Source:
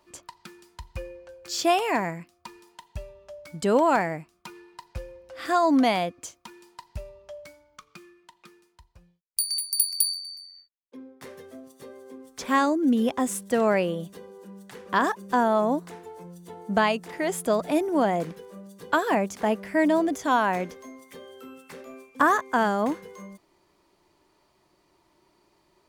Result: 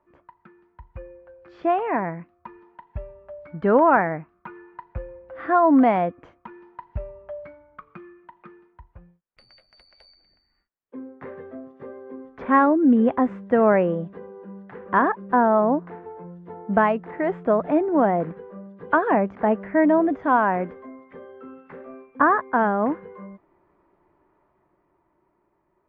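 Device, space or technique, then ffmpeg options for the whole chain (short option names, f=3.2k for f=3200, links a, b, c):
action camera in a waterproof case: -filter_complex "[0:a]asettb=1/sr,asplit=3[a][b][c];[a]atrim=end=3.524[d];[b]atrim=start=3.52:end=4.83,asetpts=PTS-STARTPTS,afade=t=in:d=0.004:c=qsin,afade=t=out:st=1.306:d=0.004:c=qsin,equalizer=f=1.5k:w=1.3:g=4[e];[c]atrim=start=4.826[f];[d][e]acrossfade=d=0.004:c1=hsin:c2=qsin[g];[g][f]acrossfade=d=0.004:c1=qsin:c2=hsin,lowpass=f=1.8k:w=0.5412,lowpass=f=1.8k:w=1.3066,dynaudnorm=f=210:g=17:m=12dB,volume=-4dB" -ar 22050 -c:a aac -b:a 48k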